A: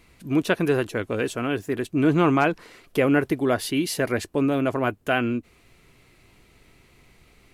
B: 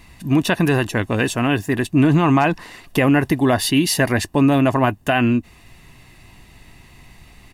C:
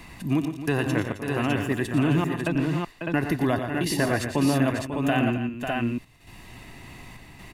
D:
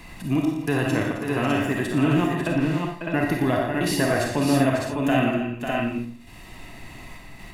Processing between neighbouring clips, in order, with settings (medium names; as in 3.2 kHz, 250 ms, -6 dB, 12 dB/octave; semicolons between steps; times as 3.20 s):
comb 1.1 ms, depth 55%; loudness maximiser +13.5 dB; trim -5.5 dB
trance gate "xx.xx.xxxx." 67 bpm -60 dB; on a send: multi-tap echo 91/116/166/264/545/605 ms -12/-9.5/-18.5/-15/-10/-5.5 dB; on the sum: three bands compressed up and down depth 40%; trim -7.5 dB
algorithmic reverb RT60 0.42 s, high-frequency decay 0.55×, pre-delay 10 ms, DRR 1 dB